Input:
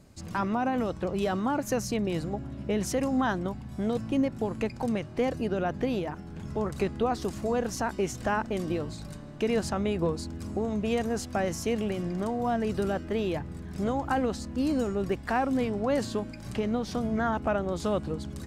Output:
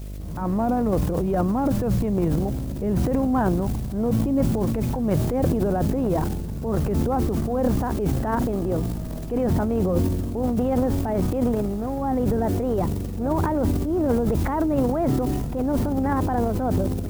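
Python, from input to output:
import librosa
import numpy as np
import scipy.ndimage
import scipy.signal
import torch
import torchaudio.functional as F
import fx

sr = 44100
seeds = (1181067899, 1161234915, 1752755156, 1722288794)

p1 = fx.speed_glide(x, sr, from_pct=93, to_pct=123)
p2 = scipy.signal.sosfilt(scipy.signal.butter(2, 1000.0, 'lowpass', fs=sr, output='sos'), p1)
p3 = fx.low_shelf(p2, sr, hz=150.0, db=5.5)
p4 = fx.level_steps(p3, sr, step_db=14)
p5 = p3 + F.gain(torch.from_numpy(p4), -2.5).numpy()
p6 = fx.dmg_noise_colour(p5, sr, seeds[0], colour='white', level_db=-54.0)
p7 = fx.transient(p6, sr, attack_db=-6, sustain_db=12)
p8 = fx.dmg_buzz(p7, sr, base_hz=50.0, harmonics=14, level_db=-35.0, tilt_db=-8, odd_only=False)
y = fx.sustainer(p8, sr, db_per_s=29.0)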